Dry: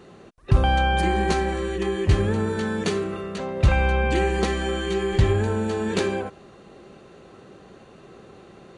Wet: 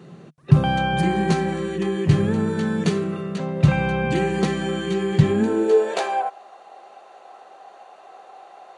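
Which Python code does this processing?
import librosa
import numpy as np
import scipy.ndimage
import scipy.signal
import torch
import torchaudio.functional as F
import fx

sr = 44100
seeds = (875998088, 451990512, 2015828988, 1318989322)

y = fx.filter_sweep_highpass(x, sr, from_hz=150.0, to_hz=750.0, start_s=5.19, end_s=6.04, q=6.1)
y = y * librosa.db_to_amplitude(-1.0)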